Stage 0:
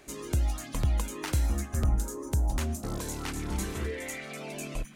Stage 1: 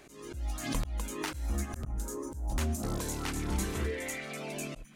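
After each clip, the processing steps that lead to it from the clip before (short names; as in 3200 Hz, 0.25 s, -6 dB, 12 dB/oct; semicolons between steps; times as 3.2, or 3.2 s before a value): auto swell 0.294 s; backwards sustainer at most 79 dB/s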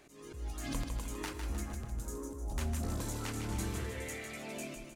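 on a send: feedback echo 0.154 s, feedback 46%, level -6.5 dB; on the sum: FDN reverb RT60 1.9 s, low-frequency decay 1×, high-frequency decay 0.55×, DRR 13 dB; gain -5.5 dB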